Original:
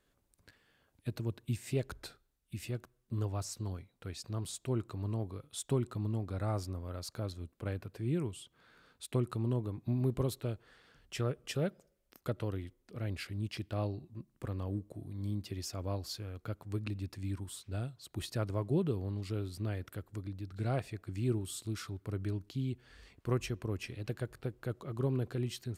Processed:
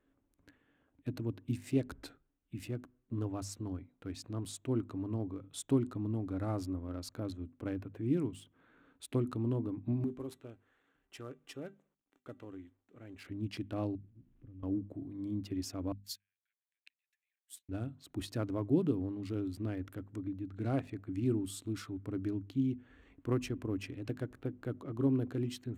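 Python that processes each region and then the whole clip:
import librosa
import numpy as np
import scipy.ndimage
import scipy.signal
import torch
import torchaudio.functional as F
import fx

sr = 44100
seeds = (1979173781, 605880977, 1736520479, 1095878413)

y = fx.chain(x, sr, fx.cvsd(bps=64000),
    fx.low_shelf(hz=390.0, db=-8.0),
    fx.comb_fb(f0_hz=390.0, decay_s=0.19, harmonics='all', damping=0.0, mix_pct=60), at=(10.04, 13.25))
y = fx.chain(y, sr, fx.zero_step(step_db=-50.0),
    fx.tone_stack(knobs='10-0-1'),
    fx.resample_linear(factor=4), at=(13.95, 14.63))
y = fx.chain(y, sr, fx.steep_highpass(hz=1600.0, slope=96),
    fx.high_shelf(hz=9200.0, db=11.5),
    fx.upward_expand(threshold_db=-54.0, expansion=2.5), at=(15.92, 17.69))
y = fx.wiener(y, sr, points=9)
y = fx.peak_eq(y, sr, hz=280.0, db=14.0, octaves=0.35)
y = fx.hum_notches(y, sr, base_hz=50, count=5)
y = y * 10.0 ** (-2.0 / 20.0)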